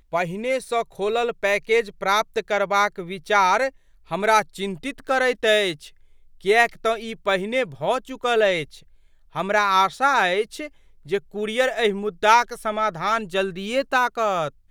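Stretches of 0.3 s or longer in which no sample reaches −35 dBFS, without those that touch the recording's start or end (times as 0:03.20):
0:03.69–0:04.11
0:05.88–0:06.44
0:08.78–0:09.35
0:10.67–0:11.06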